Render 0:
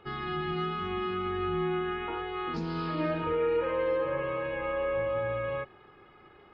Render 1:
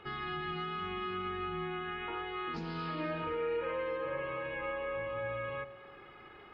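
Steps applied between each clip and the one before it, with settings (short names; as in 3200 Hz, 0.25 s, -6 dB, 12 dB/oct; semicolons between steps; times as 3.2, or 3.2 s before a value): bell 2300 Hz +5.5 dB 2 oct; compressor 1.5:1, threshold -48 dBFS, peak gain reduction 8.5 dB; echo with dull and thin repeats by turns 0.113 s, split 1100 Hz, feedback 62%, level -13 dB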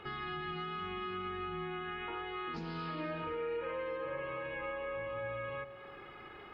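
compressor 1.5:1, threshold -49 dBFS, peak gain reduction 6.5 dB; gain +3 dB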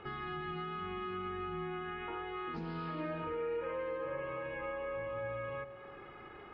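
LPF 1800 Hz 6 dB/oct; gain +1 dB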